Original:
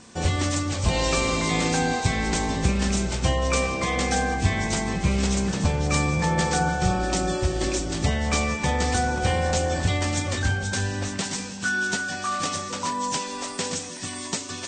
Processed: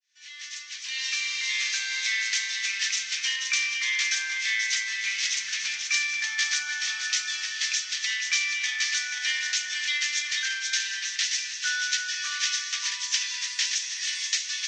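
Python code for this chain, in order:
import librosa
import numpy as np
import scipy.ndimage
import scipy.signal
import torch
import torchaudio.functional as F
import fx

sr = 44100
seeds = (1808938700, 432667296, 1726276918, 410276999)

p1 = fx.fade_in_head(x, sr, length_s=2.27)
p2 = scipy.signal.sosfilt(scipy.signal.ellip(3, 1.0, 50, [1800.0, 6200.0], 'bandpass', fs=sr, output='sos'), p1)
p3 = fx.rider(p2, sr, range_db=5, speed_s=0.5)
p4 = p2 + F.gain(torch.from_numpy(p3), -1.0).numpy()
y = p4 + 10.0 ** (-7.5 / 20.0) * np.pad(p4, (int(483 * sr / 1000.0), 0))[:len(p4)]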